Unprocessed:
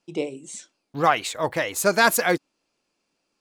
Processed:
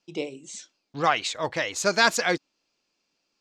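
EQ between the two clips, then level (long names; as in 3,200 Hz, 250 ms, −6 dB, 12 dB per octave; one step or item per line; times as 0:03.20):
high-frequency loss of the air 170 metres
parametric band 6,400 Hz +13.5 dB 2.2 octaves
high-shelf EQ 9,400 Hz +11 dB
−4.0 dB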